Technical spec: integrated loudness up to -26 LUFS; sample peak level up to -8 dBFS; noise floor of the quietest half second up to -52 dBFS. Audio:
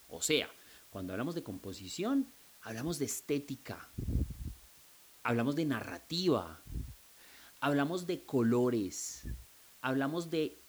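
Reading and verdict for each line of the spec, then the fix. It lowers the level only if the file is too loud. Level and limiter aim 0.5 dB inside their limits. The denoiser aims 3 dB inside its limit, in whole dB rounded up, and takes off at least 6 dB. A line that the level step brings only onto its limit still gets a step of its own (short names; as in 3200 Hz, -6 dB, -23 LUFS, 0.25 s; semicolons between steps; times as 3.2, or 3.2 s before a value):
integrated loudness -35.5 LUFS: OK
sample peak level -16.5 dBFS: OK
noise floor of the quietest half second -59 dBFS: OK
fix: none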